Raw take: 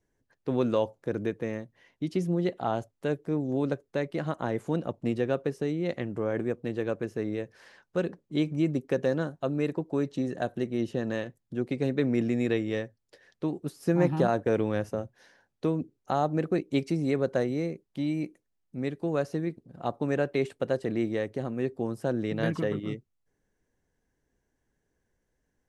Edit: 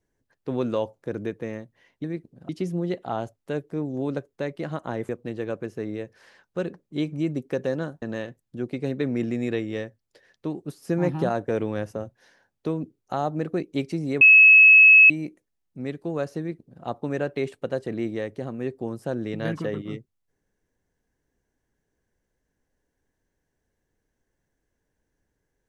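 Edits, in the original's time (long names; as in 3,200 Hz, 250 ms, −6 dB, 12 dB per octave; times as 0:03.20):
0:04.64–0:06.48: remove
0:09.41–0:11.00: remove
0:17.19–0:18.08: beep over 2,580 Hz −8.5 dBFS
0:19.37–0:19.82: duplicate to 0:02.04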